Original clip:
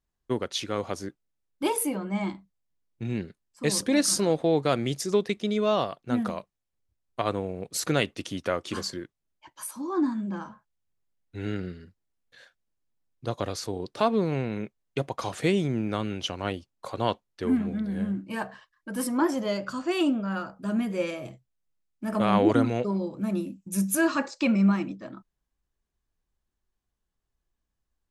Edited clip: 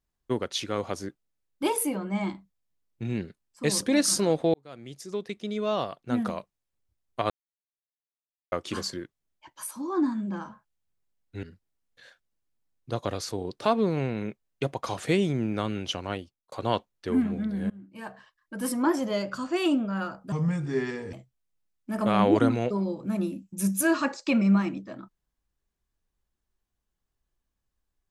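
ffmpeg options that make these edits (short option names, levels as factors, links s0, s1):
-filter_complex "[0:a]asplit=9[s0][s1][s2][s3][s4][s5][s6][s7][s8];[s0]atrim=end=4.54,asetpts=PTS-STARTPTS,afade=t=out:st=4.536:d=0.004:c=hsin[s9];[s1]atrim=start=4.54:end=7.3,asetpts=PTS-STARTPTS,afade=t=in:d=1.74,afade=t=out:st=2.756:d=0.004:c=hsin[s10];[s2]atrim=start=7.3:end=8.52,asetpts=PTS-STARTPTS,volume=0[s11];[s3]atrim=start=8.52:end=11.432,asetpts=PTS-STARTPTS,afade=t=in:d=0.004:c=hsin[s12];[s4]atrim=start=11.778:end=16.87,asetpts=PTS-STARTPTS,afade=t=out:st=4.582:d=0.51[s13];[s5]atrim=start=16.87:end=18.05,asetpts=PTS-STARTPTS,afade=t=in:d=0.004:c=hsin,afade=t=out:st=1.176:d=0.004:c=hsin:silence=0.0794328[s14];[s6]atrim=start=18.05:end=20.674,asetpts=PTS-STARTPTS,afade=t=in:d=0.97:silence=0.0794328[s15];[s7]atrim=start=20.67:end=21.27,asetpts=PTS-STARTPTS,asetrate=32634,aresample=44100[s16];[s8]atrim=start=21.266[s17];[s9][s10][s11][s12]concat=n=4:v=0:a=1[s18];[s13][s14][s15]concat=n=3:v=0:a=1[s19];[s18][s19]acrossfade=d=0.004:c1=hsin:c2=hsin[s20];[s20][s16]acrossfade=d=0.004:c1=hsin:c2=hsin[s21];[s21][s17]acrossfade=d=0.004:c1=hsin:c2=hsin"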